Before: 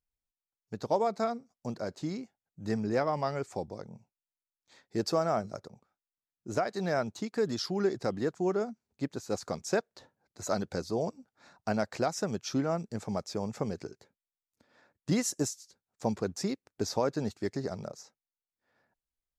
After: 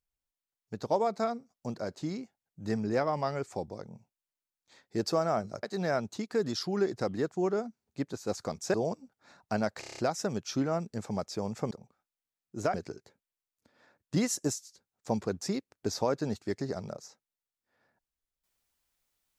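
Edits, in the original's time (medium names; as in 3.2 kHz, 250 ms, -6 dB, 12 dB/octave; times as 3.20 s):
5.63–6.66 s: move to 13.69 s
9.77–10.90 s: delete
11.96 s: stutter 0.03 s, 7 plays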